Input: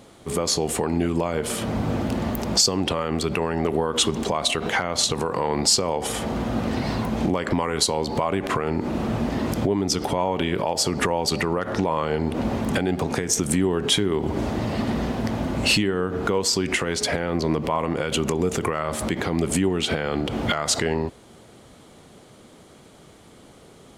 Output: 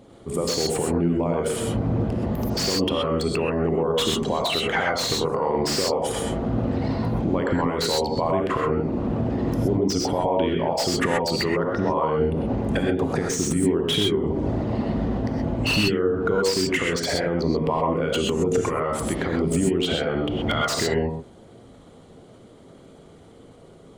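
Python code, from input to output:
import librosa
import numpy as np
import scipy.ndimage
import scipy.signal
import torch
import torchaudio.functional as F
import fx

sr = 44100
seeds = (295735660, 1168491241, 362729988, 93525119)

y = fx.envelope_sharpen(x, sr, power=1.5)
y = fx.rev_gated(y, sr, seeds[0], gate_ms=150, shape='rising', drr_db=0.5)
y = fx.slew_limit(y, sr, full_power_hz=330.0)
y = F.gain(torch.from_numpy(y), -1.5).numpy()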